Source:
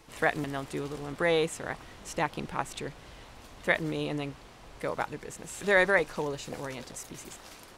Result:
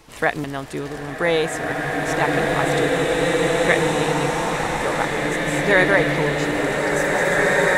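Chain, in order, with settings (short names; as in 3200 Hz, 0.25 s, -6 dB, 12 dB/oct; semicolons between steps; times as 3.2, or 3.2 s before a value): bloom reverb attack 2.34 s, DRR -5.5 dB; gain +6.5 dB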